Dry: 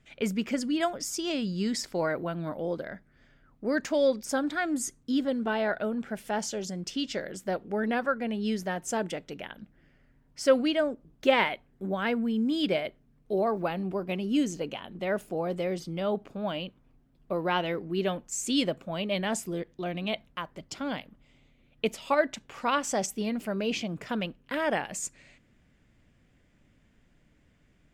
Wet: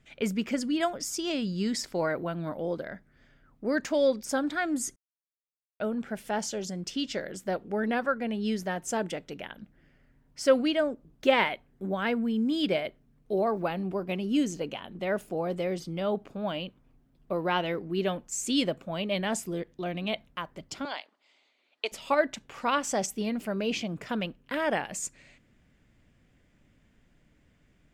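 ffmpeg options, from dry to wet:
-filter_complex "[0:a]asettb=1/sr,asplit=3[s0][s1][s2];[s0]atrim=end=20.854[s3];[s1]atrim=start=20.85:end=21.92,asetpts=PTS-STARTPTS,afade=t=in:d=0.004:c=qsin,afade=t=out:st=1.066:d=0.004:c=qsin,highpass=f=430:w=0.5412,highpass=f=430:w=1.3066,equalizer=f=500:t=q:w=4:g=-8,equalizer=f=930:t=q:w=4:g=3,equalizer=f=4400:t=q:w=4:g=10,lowpass=f=8900:w=0.5412,lowpass=f=8900:w=1.3066[s4];[s2]atrim=start=21.916[s5];[s3][s4]acrossfade=d=0.004:c1=hsin:c2=qsin[s6];[s6][s5]acrossfade=d=0.004:c1=qsin:c2=hsin,asplit=3[s7][s8][s9];[s7]atrim=end=4.96,asetpts=PTS-STARTPTS,afade=t=out:st=4.956:d=0.004:c=hsin[s10];[s8]atrim=start=4.96:end=5.8,asetpts=PTS-STARTPTS,volume=0[s11];[s9]atrim=start=5.8,asetpts=PTS-STARTPTS,afade=t=in:d=0.004:c=hsin[s12];[s10][s11][s12]concat=n=3:v=0:a=1"

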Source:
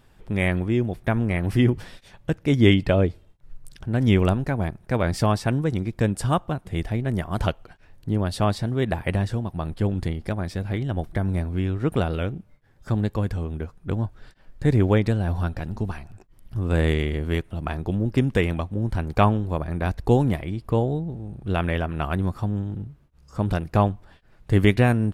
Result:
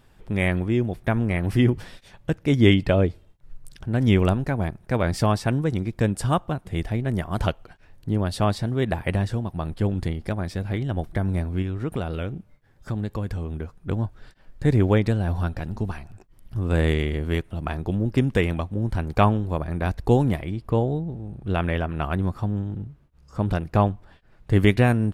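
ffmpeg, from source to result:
-filter_complex "[0:a]asettb=1/sr,asplit=3[s0][s1][s2];[s0]atrim=end=11.624[s3];[s1]atrim=start=11.62:end=13.77,asetpts=PTS-STARTPTS,afade=t=in:d=0.004:c=qsin,afade=t=out:st=2.146:d=0.004:c=qsin,acompressor=threshold=0.0562:ratio=2:attack=3.2:release=140:knee=1:detection=peak[s4];[s2]atrim=start=13.766[s5];[s3][s4]acrossfade=d=0.004:c1=hsin:c2=qsin[s6];[s6][s5]acrossfade=d=0.004:c1=qsin:c2=hsin,asettb=1/sr,asplit=3[s7][s8][s9];[s7]atrim=end=20.514[s10];[s8]atrim=start=20.51:end=24.56,asetpts=PTS-STARTPTS,afade=t=in:d=0.004:c=qsin,afade=t=out:st=4.046:d=0.004:c=qsin,highshelf=f=4900:g=-4.5[s11];[s9]atrim=start=24.556[s12];[s10][s11]acrossfade=d=0.004:c1=hsin:c2=qsin[s13];[s13][s12]acrossfade=d=0.004:c1=qsin:c2=hsin"

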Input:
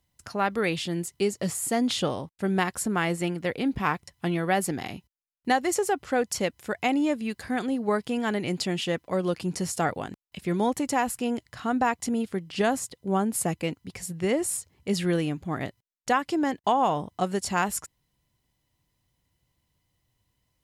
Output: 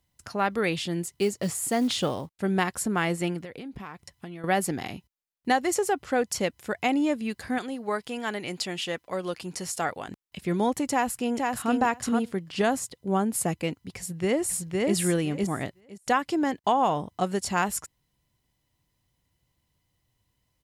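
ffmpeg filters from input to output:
-filter_complex "[0:a]asettb=1/sr,asplit=3[s0][s1][s2];[s0]atrim=end=1.084[s3];[s1]atrim=start=1.08:end=2.33,asetpts=PTS-STARTPTS,afade=t=in:d=0.004:c=qsin,afade=t=out:st=1.246:d=0.004:c=qsin,acrusher=bits=7:mode=log:mix=0:aa=0.000001[s4];[s2]atrim=start=2.326[s5];[s3][s4]acrossfade=d=0.004:c1=hsin:c2=qsin[s6];[s6][s5]acrossfade=d=0.004:c1=qsin:c2=hsin,asettb=1/sr,asplit=3[s7][s8][s9];[s7]atrim=end=3.394[s10];[s8]atrim=start=3.39:end=4.44,asetpts=PTS-STARTPTS,afade=t=in:d=0.004:c=qsin,afade=t=out:st=1.046:d=0.004:c=qsin,acompressor=threshold=0.0178:ratio=12:attack=3.2:release=140:knee=1:detection=peak[s11];[s9]atrim=start=4.436[s12];[s10][s11]acrossfade=d=0.004:c1=hsin:c2=qsin[s13];[s13][s12]acrossfade=d=0.004:c1=qsin:c2=hsin,asettb=1/sr,asplit=3[s14][s15][s16];[s14]atrim=end=7.584[s17];[s15]atrim=start=7.58:end=10.08,asetpts=PTS-STARTPTS,afade=t=in:d=0.004:c=qsin,afade=t=out:st=2.496:d=0.004:c=qsin,equalizer=f=130:w=0.32:g=-9[s18];[s16]atrim=start=10.076[s19];[s17][s18]acrossfade=d=0.004:c1=hsin:c2=qsin[s20];[s20][s19]acrossfade=d=0.004:c1=qsin:c2=hsin,asplit=2[s21][s22];[s22]afade=t=in:st=10.9:d=0.01,afade=t=out:st=11.72:d=0.01,aecho=0:1:470|940:0.707946|0.0707946[s23];[s21][s23]amix=inputs=2:normalize=0,asplit=2[s24][s25];[s25]afade=t=in:st=13.98:d=0.01,afade=t=out:st=14.95:d=0.01,aecho=0:1:510|1020|1530:0.841395|0.126209|0.0189314[s26];[s24][s26]amix=inputs=2:normalize=0"

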